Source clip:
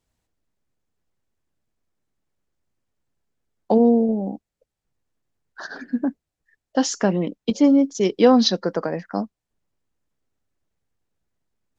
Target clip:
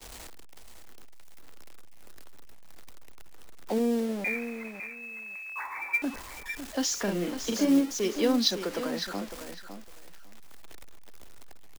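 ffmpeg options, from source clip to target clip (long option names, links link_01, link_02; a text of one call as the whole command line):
ffmpeg -i in.wav -filter_complex "[0:a]aeval=exprs='val(0)+0.5*0.0422*sgn(val(0))':channel_layout=same,asettb=1/sr,asplit=3[link_01][link_02][link_03];[link_01]atrim=end=4.244[link_04];[link_02]atrim=start=4.24:end=6.02,asetpts=PTS-STARTPTS,afade=type=in:duration=0.004:curve=qsin,afade=type=out:start_time=1.776:duration=0.004:curve=qsin,lowpass=frequency=2200:width_type=q:width=0.5098,lowpass=frequency=2200:width_type=q:width=0.6013,lowpass=frequency=2200:width_type=q:width=0.9,lowpass=frequency=2200:width_type=q:width=2.563,afreqshift=-2600[link_05];[link_03]atrim=start=6.016[link_06];[link_04][link_05]acrossfade=duration=0.004:curve1=hsin:curve2=qsin[link_07];[link_07][link_06]acrossfade=duration=0.004:curve1=qsin:curve2=hsin,equalizer=frequency=130:width_type=o:width=1.4:gain=-15,acrossover=split=290|410|1400[link_08][link_09][link_10][link_11];[link_10]acompressor=threshold=-34dB:ratio=6[link_12];[link_08][link_09][link_12][link_11]amix=inputs=4:normalize=0,agate=range=-33dB:threshold=-31dB:ratio=3:detection=peak,asplit=3[link_13][link_14][link_15];[link_13]afade=type=out:start_time=7.07:duration=0.02[link_16];[link_14]asplit=2[link_17][link_18];[link_18]adelay=40,volume=-4dB[link_19];[link_17][link_19]amix=inputs=2:normalize=0,afade=type=in:start_time=7.07:duration=0.02,afade=type=out:start_time=7.79:duration=0.02[link_20];[link_15]afade=type=in:start_time=7.79:duration=0.02[link_21];[link_16][link_20][link_21]amix=inputs=3:normalize=0,aecho=1:1:555|1110:0.316|0.0506,acrusher=bits=5:mode=log:mix=0:aa=0.000001,volume=-5.5dB" out.wav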